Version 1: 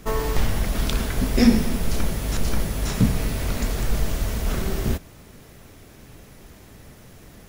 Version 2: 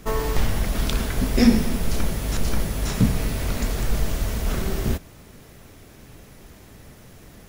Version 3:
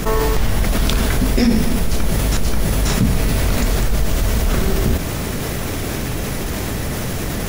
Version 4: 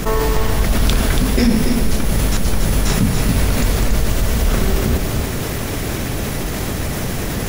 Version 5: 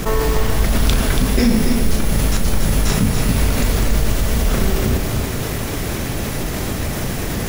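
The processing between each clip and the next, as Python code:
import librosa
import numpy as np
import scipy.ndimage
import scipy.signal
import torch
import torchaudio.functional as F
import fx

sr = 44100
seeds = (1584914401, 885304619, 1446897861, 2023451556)

y1 = x
y2 = fx.env_flatten(y1, sr, amount_pct=70)
y2 = F.gain(torch.from_numpy(y2), -1.5).numpy()
y3 = y2 + 10.0 ** (-6.5 / 20.0) * np.pad(y2, (int(283 * sr / 1000.0), 0))[:len(y2)]
y4 = fx.quant_companded(y3, sr, bits=6)
y4 = fx.doubler(y4, sr, ms=37.0, db=-11.0)
y4 = F.gain(torch.from_numpy(y4), -1.0).numpy()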